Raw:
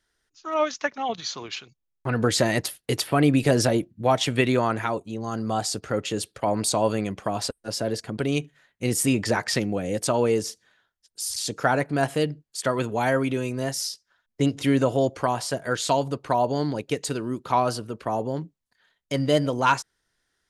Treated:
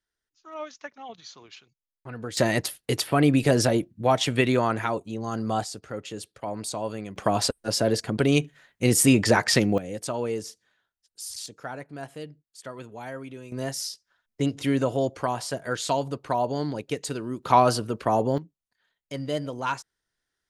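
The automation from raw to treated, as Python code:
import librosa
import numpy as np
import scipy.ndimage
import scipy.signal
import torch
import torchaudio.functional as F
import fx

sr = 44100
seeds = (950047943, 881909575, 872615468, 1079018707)

y = fx.gain(x, sr, db=fx.steps((0.0, -13.0), (2.37, -0.5), (5.64, -8.5), (7.16, 4.0), (9.78, -7.0), (11.46, -14.5), (13.52, -3.0), (17.43, 4.0), (18.38, -8.0)))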